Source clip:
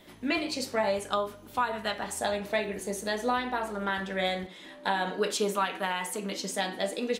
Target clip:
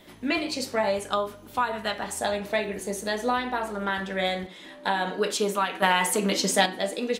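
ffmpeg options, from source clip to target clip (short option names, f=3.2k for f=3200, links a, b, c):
-filter_complex "[0:a]asettb=1/sr,asplit=3[a][b][c];[a]atrim=end=5.824[d];[b]atrim=start=5.82:end=6.66,asetpts=PTS-STARTPTS,afade=t=in:d=0.004:c=qsin,afade=t=out:st=0.836:d=0.004:c=qsin,acontrast=85[e];[c]atrim=start=6.656[f];[d][e]acrossfade=d=0.004:c1=hsin:c2=qsin[g];[g][f]acrossfade=d=0.004:c1=qsin:c2=hsin,volume=2.5dB"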